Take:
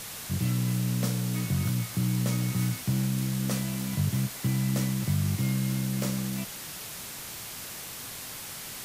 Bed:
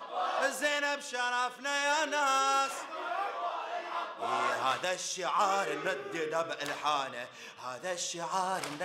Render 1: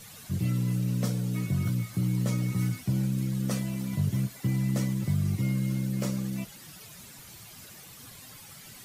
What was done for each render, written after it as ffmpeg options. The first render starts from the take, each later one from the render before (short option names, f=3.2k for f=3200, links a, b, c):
-af "afftdn=nr=12:nf=-40"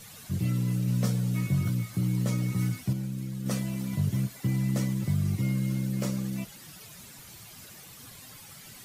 -filter_complex "[0:a]asettb=1/sr,asplit=3[a][b][c];[a]atrim=end=0.864[d];[b]atrim=start=0.86:end=1.61,asetpts=PTS-STARTPTS,afade=t=in:d=0.004:c=qsin,afade=t=out:st=0.746:d=0.004:c=qsin,asplit=2[e][f];[f]adelay=15,volume=-6.5dB[g];[e][g]amix=inputs=2:normalize=0,atrim=end_sample=33075[h];[c]atrim=start=1.606[i];[d][h]acrossfade=d=0.004:c1=hsin:c2=qsin[j];[j][i]acrossfade=d=0.004:c1=qsin:c2=hsin,asplit=3[k][l][m];[k]atrim=end=2.932[n];[l]atrim=start=2.928:end=3.462,asetpts=PTS-STARTPTS,volume=-5.5dB[o];[m]atrim=start=3.458[p];[n][o]acrossfade=d=0.004:c1=hsin:c2=hsin[q];[q][p]acrossfade=d=0.004:c1=hsin:c2=hsin"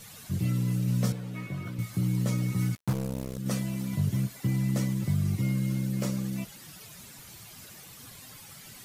-filter_complex "[0:a]asettb=1/sr,asplit=3[a][b][c];[a]atrim=end=1.124[d];[b]atrim=start=1.12:end=1.79,asetpts=PTS-STARTPTS,afade=t=in:d=0.004:c=qsin,afade=t=out:st=0.666:d=0.004:c=qsin,bass=f=250:g=-11,treble=f=4k:g=-13[e];[c]atrim=start=1.786[f];[d][e]acrossfade=d=0.004:c1=hsin:c2=qsin[g];[g][f]acrossfade=d=0.004:c1=qsin:c2=hsin,asettb=1/sr,asplit=3[h][i][j];[h]atrim=end=2.754[k];[i]atrim=start=2.75:end=3.38,asetpts=PTS-STARTPTS,afade=t=in:d=0.004:c=qsin,afade=t=out:st=0.626:d=0.004:c=qsin,acrusher=bits=4:mix=0:aa=0.5[l];[j]atrim=start=3.376[m];[k][l]acrossfade=d=0.004:c1=hsin:c2=qsin[n];[n][m]acrossfade=d=0.004:c1=qsin:c2=hsin"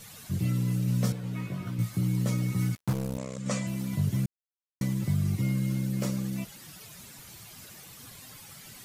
-filter_complex "[0:a]asettb=1/sr,asplit=3[a][b][c];[a]atrim=end=1.224[d];[b]atrim=start=1.22:end=1.89,asetpts=PTS-STARTPTS,afade=t=in:d=0.004:c=qsin,afade=t=out:st=0.666:d=0.004:c=qsin,asplit=2[e][f];[f]adelay=17,volume=-4dB[g];[e][g]amix=inputs=2:normalize=0,atrim=end_sample=29547[h];[c]atrim=start=1.886[i];[d][h]acrossfade=d=0.004:c1=hsin:c2=qsin[j];[j][i]acrossfade=d=0.004:c1=qsin:c2=hsin,asettb=1/sr,asplit=3[k][l][m];[k]atrim=end=3.184[n];[l]atrim=start=3.18:end=3.67,asetpts=PTS-STARTPTS,afade=t=in:d=0.004:c=qsin,afade=t=out:st=0.486:d=0.004:c=qsin,highpass=120,equalizer=f=350:t=q:w=4:g=-9,equalizer=f=570:t=q:w=4:g=7,equalizer=f=1.1k:t=q:w=4:g=7,equalizer=f=2.2k:t=q:w=4:g=7,equalizer=f=7.3k:t=q:w=4:g=9,lowpass=f=8.4k:w=0.5412,lowpass=f=8.4k:w=1.3066[o];[m]atrim=start=3.666[p];[n][o]acrossfade=d=0.004:c1=hsin:c2=qsin[q];[q][p]acrossfade=d=0.004:c1=qsin:c2=hsin,asplit=3[r][s][t];[r]atrim=end=4.26,asetpts=PTS-STARTPTS,afade=t=out:st=4.256:d=0.004:c=hsin[u];[s]atrim=start=4.26:end=4.81,asetpts=PTS-STARTPTS,volume=0[v];[t]atrim=start=4.81,asetpts=PTS-STARTPTS,afade=t=in:d=0.004:c=hsin[w];[u][v][w]concat=n=3:v=0:a=1"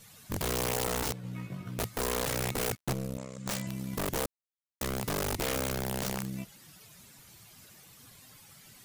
-af "aeval=exprs='0.168*(cos(1*acos(clip(val(0)/0.168,-1,1)))-cos(1*PI/2))+0.0168*(cos(3*acos(clip(val(0)/0.168,-1,1)))-cos(3*PI/2))+0.00596*(cos(7*acos(clip(val(0)/0.168,-1,1)))-cos(7*PI/2))':c=same,aeval=exprs='(mod(18.8*val(0)+1,2)-1)/18.8':c=same"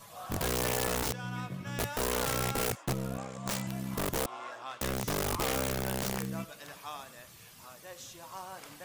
-filter_complex "[1:a]volume=-12dB[a];[0:a][a]amix=inputs=2:normalize=0"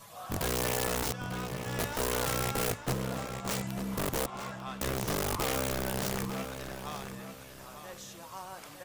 -filter_complex "[0:a]asplit=2[a][b];[b]adelay=896,lowpass=f=4.8k:p=1,volume=-8dB,asplit=2[c][d];[d]adelay=896,lowpass=f=4.8k:p=1,volume=0.32,asplit=2[e][f];[f]adelay=896,lowpass=f=4.8k:p=1,volume=0.32,asplit=2[g][h];[h]adelay=896,lowpass=f=4.8k:p=1,volume=0.32[i];[a][c][e][g][i]amix=inputs=5:normalize=0"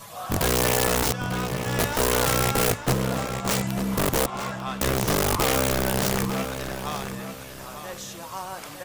-af "volume=9dB"